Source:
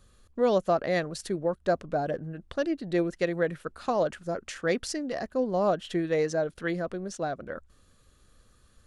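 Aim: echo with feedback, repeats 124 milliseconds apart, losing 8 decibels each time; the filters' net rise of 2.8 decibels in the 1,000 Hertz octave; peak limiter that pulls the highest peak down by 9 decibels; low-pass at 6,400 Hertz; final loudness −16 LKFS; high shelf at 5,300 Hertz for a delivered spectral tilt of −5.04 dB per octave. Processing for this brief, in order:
low-pass filter 6,400 Hz
parametric band 1,000 Hz +4 dB
high-shelf EQ 5,300 Hz +8 dB
brickwall limiter −21 dBFS
repeating echo 124 ms, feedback 40%, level −8 dB
level +15 dB

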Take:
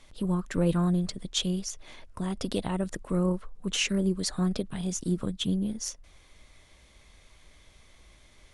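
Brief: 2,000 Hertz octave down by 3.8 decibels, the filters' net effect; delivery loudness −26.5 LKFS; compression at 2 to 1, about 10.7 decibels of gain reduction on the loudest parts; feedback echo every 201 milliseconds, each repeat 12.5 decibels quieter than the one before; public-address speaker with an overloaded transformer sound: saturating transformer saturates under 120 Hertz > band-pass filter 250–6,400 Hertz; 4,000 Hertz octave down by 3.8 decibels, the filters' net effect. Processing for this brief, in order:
parametric band 2,000 Hz −4 dB
parametric band 4,000 Hz −3 dB
downward compressor 2 to 1, threshold −42 dBFS
repeating echo 201 ms, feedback 24%, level −12.5 dB
saturating transformer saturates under 120 Hz
band-pass filter 250–6,400 Hz
level +17.5 dB

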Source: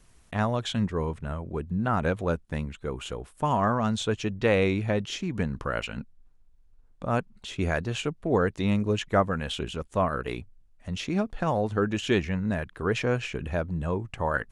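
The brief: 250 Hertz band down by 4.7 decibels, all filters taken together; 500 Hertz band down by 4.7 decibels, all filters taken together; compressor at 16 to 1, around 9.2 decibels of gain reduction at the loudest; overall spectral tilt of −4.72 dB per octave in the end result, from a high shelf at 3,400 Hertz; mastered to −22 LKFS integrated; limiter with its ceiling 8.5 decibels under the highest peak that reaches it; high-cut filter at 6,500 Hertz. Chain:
low-pass filter 6,500 Hz
parametric band 250 Hz −5.5 dB
parametric band 500 Hz −4.5 dB
high-shelf EQ 3,400 Hz +8 dB
downward compressor 16 to 1, threshold −29 dBFS
level +16 dB
brickwall limiter −11 dBFS

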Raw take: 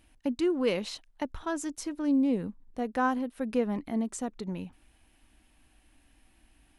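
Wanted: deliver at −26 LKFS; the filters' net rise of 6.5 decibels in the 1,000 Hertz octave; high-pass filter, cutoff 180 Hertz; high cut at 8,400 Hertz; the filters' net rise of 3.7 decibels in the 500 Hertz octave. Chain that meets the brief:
high-pass filter 180 Hz
low-pass filter 8,400 Hz
parametric band 500 Hz +3 dB
parametric band 1,000 Hz +7 dB
level +3 dB

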